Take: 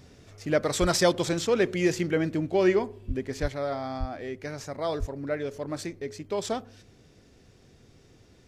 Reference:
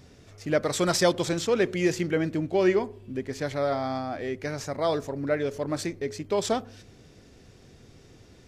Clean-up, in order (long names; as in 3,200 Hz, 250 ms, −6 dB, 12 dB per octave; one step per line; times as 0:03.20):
high-pass at the plosives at 0:00.80/0:03.07/0:03.41/0:03.99/0:04.99
level 0 dB, from 0:03.48 +4 dB